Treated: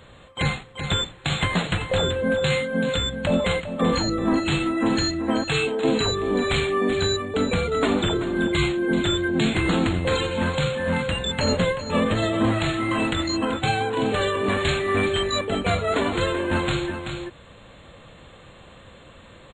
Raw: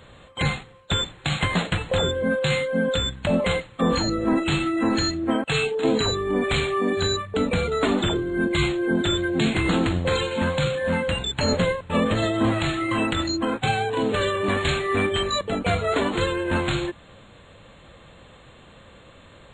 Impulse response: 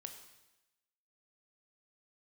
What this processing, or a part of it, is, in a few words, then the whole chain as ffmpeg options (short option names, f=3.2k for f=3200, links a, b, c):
ducked delay: -filter_complex "[0:a]asplit=3[a][b][c];[b]adelay=383,volume=-3.5dB[d];[c]apad=whole_len=878182[e];[d][e]sidechaincompress=threshold=-26dB:ratio=8:attack=48:release=1330[f];[a][f]amix=inputs=2:normalize=0"